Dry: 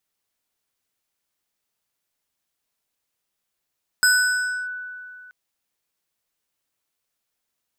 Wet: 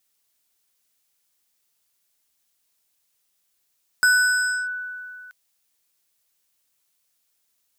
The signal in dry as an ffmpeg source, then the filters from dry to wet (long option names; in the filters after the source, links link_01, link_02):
-f lavfi -i "aevalsrc='0.251*pow(10,-3*t/2.51)*sin(2*PI*1490*t+0.97*clip(1-t/0.65,0,1)*sin(2*PI*4.4*1490*t))':duration=1.28:sample_rate=44100"
-filter_complex "[0:a]acrossover=split=2600[link_01][link_02];[link_02]acompressor=threshold=-34dB:ratio=4:attack=1:release=60[link_03];[link_01][link_03]amix=inputs=2:normalize=0,highshelf=frequency=3000:gain=10"